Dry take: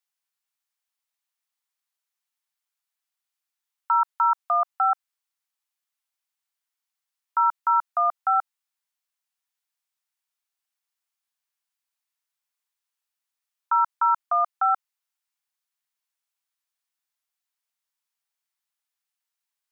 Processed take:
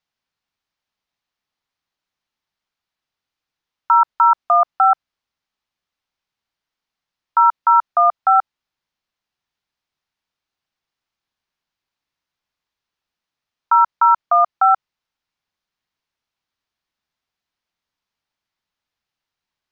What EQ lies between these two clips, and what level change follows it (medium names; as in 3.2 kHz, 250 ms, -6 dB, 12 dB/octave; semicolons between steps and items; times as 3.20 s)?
distance through air 270 m; tone controls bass +1 dB, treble +12 dB; bass shelf 500 Hz +10 dB; +7.5 dB